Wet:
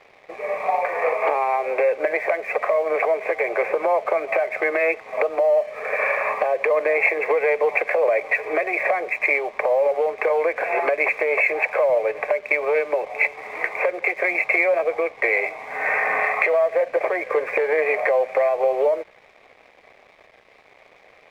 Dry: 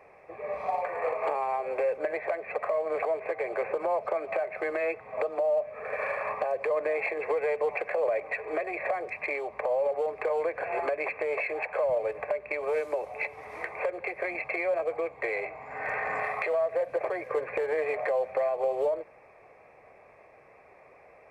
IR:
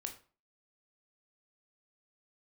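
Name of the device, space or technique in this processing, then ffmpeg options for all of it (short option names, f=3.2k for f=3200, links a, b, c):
pocket radio on a weak battery: -af "highpass=250,lowpass=3.5k,aeval=exprs='sgn(val(0))*max(abs(val(0))-0.00141,0)':c=same,equalizer=f=2.2k:t=o:w=0.47:g=7,volume=8.5dB"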